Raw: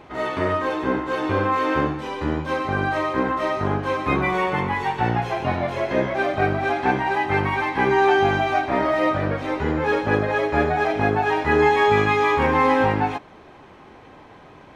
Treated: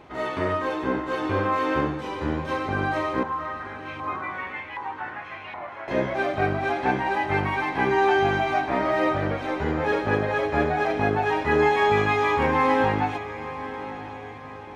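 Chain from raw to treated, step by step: 3.23–5.88 LFO band-pass saw up 1.3 Hz 960–2800 Hz; diffused feedback echo 1.008 s, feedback 44%, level -13 dB; gain -3 dB

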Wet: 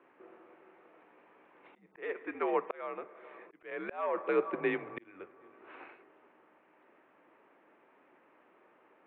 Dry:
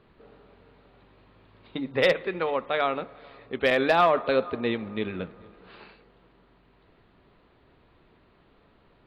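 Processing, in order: mistuned SSB -82 Hz 410–2600 Hz; auto swell 0.744 s

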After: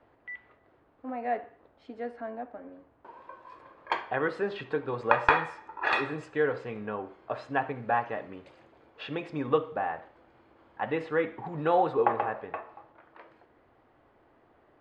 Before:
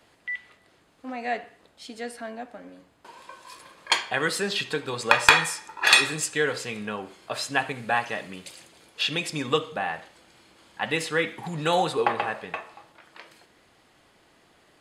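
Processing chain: LPF 1200 Hz 12 dB/oct; bell 180 Hz -10.5 dB 0.39 oct

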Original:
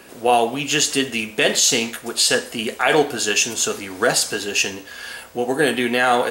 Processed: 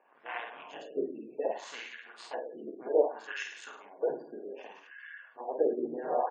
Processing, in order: cycle switcher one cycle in 3, muted; bell 80 Hz -6.5 dB 0.77 oct; notch 1300 Hz, Q 6.8; reverse bouncing-ball echo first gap 50 ms, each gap 1.15×, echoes 5; wah 0.64 Hz 330–1800 Hz, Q 3.3; spectral gate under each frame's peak -25 dB strong; upward expander 1.5:1, over -32 dBFS; gain -2.5 dB

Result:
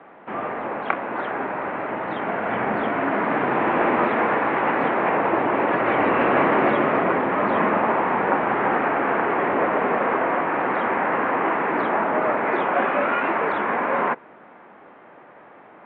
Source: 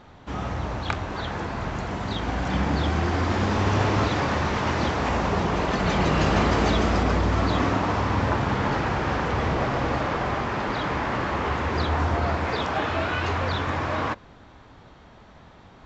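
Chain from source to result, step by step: mistuned SSB -73 Hz 330–2500 Hz; gain +6 dB

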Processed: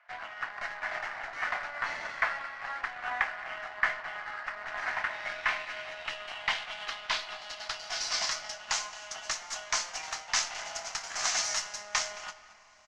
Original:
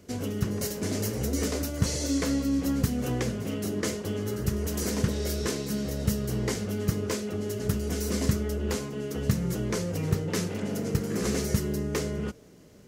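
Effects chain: steep high-pass 680 Hz 72 dB/oct; added harmonics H 8 -28 dB, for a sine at -19 dBFS; low-pass sweep 1800 Hz -> 6400 Hz, 4.84–8.75; in parallel at +1.5 dB: crossover distortion -44.5 dBFS; on the sum: air absorption 81 m; doubler 24 ms -12 dB; echo 0.22 s -18.5 dB; on a send at -13.5 dB: reverb RT60 3.4 s, pre-delay 7 ms

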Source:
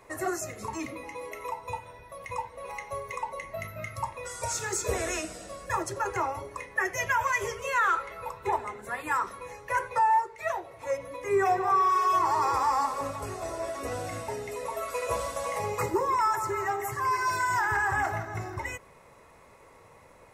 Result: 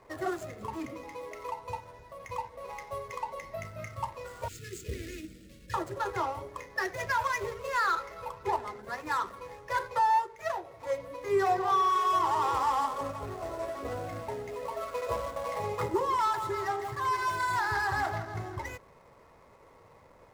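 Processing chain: median filter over 15 samples; 4.48–5.74 Chebyshev band-stop 290–2500 Hz, order 2; gain -1.5 dB

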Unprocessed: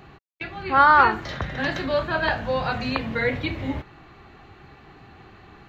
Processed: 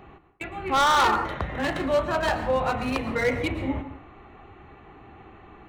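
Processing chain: Wiener smoothing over 9 samples; bell 140 Hz -6.5 dB 1 oct; plate-style reverb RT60 0.56 s, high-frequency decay 0.65×, pre-delay 0.1 s, DRR 11 dB; hard clip -17 dBFS, distortion -7 dB; bell 1600 Hz -7 dB 0.27 oct; gain +1.5 dB

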